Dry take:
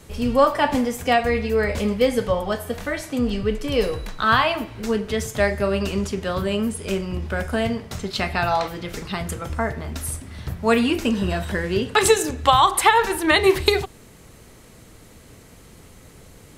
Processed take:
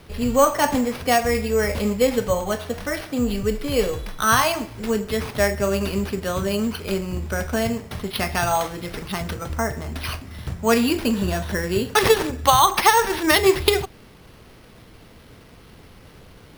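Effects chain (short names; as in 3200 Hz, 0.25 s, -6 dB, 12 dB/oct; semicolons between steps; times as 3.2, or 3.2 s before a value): careless resampling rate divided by 6×, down none, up hold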